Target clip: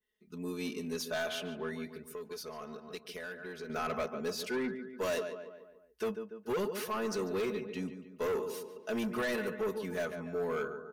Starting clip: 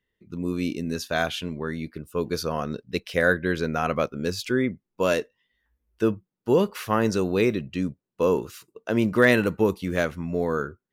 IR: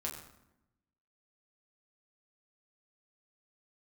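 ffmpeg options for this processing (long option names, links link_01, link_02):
-filter_complex "[0:a]alimiter=limit=-11dB:level=0:latency=1:release=478,bass=frequency=250:gain=-10,treble=frequency=4000:gain=7,bandreject=frequency=7300:width=11,aecho=1:1:4.7:0.97,asplit=2[link_01][link_02];[link_02]adelay=144,lowpass=frequency=2300:poles=1,volume=-11dB,asplit=2[link_03][link_04];[link_04]adelay=144,lowpass=frequency=2300:poles=1,volume=0.51,asplit=2[link_05][link_06];[link_06]adelay=144,lowpass=frequency=2300:poles=1,volume=0.51,asplit=2[link_07][link_08];[link_08]adelay=144,lowpass=frequency=2300:poles=1,volume=0.51,asplit=2[link_09][link_10];[link_10]adelay=144,lowpass=frequency=2300:poles=1,volume=0.51[link_11];[link_01][link_03][link_05][link_07][link_09][link_11]amix=inputs=6:normalize=0,asoftclip=type=tanh:threshold=-19.5dB,asettb=1/sr,asplit=3[link_12][link_13][link_14];[link_12]atrim=end=1.964[link_15];[link_13]atrim=start=1.96:end=3.7,asetpts=PTS-STARTPTS,afade=type=in:duration=0.004:curve=qsin,afade=type=out:start_time=1.736:duration=0.004:curve=qsin,acompressor=threshold=-34dB:ratio=4[link_16];[link_14]atrim=start=3.696[link_17];[link_15][link_16]acrossfade=duration=0.004:curve1=hsin:curve2=qsin[link_18];[link_18][link_17]acrossfade=duration=0.004:curve1=qsin:curve2=hsin,asoftclip=type=hard:threshold=-21.5dB,adynamicequalizer=threshold=0.00631:dfrequency=2400:dqfactor=0.7:tfrequency=2400:tqfactor=0.7:attack=5:release=100:ratio=0.375:range=2.5:mode=cutabove:tftype=highshelf,volume=-8dB"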